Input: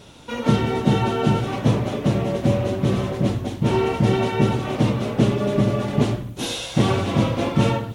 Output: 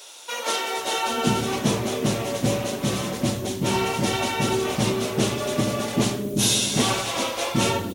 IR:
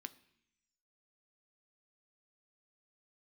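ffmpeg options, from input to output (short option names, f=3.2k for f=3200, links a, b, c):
-filter_complex "[0:a]bass=f=250:g=-6,treble=f=4k:g=12,acrossover=split=440[a][b];[a]adelay=780[c];[c][b]amix=inputs=2:normalize=0,asplit=2[d][e];[1:a]atrim=start_sample=2205,highshelf=f=9.5k:g=7.5[f];[e][f]afir=irnorm=-1:irlink=0,volume=-5dB[g];[d][g]amix=inputs=2:normalize=0,volume=-1.5dB"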